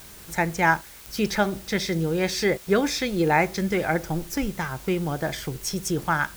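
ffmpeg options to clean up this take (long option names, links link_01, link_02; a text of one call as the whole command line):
ffmpeg -i in.wav -af "adeclick=threshold=4,afwtdn=0.005" out.wav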